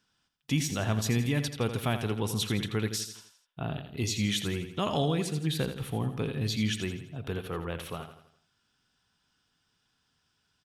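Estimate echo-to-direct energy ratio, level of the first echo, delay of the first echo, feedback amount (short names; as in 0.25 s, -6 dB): -8.5 dB, -9.5 dB, 83 ms, 46%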